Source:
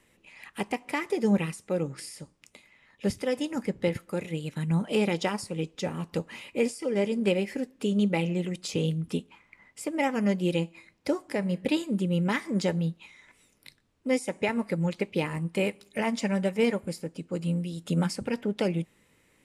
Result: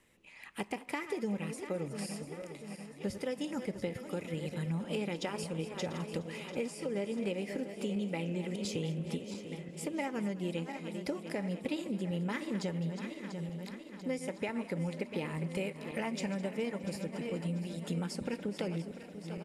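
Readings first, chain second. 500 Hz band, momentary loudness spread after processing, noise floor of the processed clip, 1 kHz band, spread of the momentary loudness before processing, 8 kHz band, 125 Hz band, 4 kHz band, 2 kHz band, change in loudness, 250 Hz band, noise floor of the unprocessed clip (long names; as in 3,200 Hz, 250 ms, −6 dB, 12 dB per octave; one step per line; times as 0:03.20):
−8.0 dB, 6 LU, −50 dBFS, −8.0 dB, 9 LU, −5.5 dB, −7.5 dB, −7.0 dB, −8.0 dB, −8.5 dB, −8.0 dB, −66 dBFS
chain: feedback delay that plays each chunk backwards 346 ms, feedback 74%, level −12.5 dB
downward compressor, threshold −28 dBFS, peak gain reduction 10 dB
echo with shifted repeats 208 ms, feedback 57%, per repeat +65 Hz, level −18 dB
level −4 dB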